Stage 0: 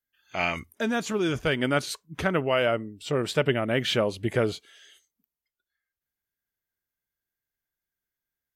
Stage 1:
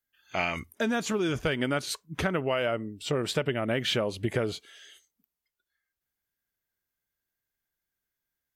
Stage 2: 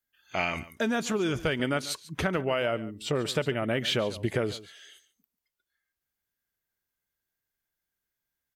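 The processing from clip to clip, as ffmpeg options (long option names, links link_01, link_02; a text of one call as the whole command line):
ffmpeg -i in.wav -af "acompressor=threshold=-26dB:ratio=6,volume=2dB" out.wav
ffmpeg -i in.wav -af "aecho=1:1:142:0.141" out.wav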